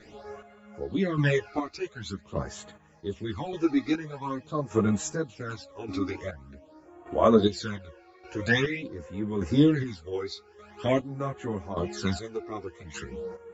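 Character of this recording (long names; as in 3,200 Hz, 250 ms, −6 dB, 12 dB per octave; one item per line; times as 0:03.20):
phaser sweep stages 12, 0.46 Hz, lowest notch 160–5,000 Hz
chopped level 0.85 Hz, depth 65%, duty 35%
a shimmering, thickened sound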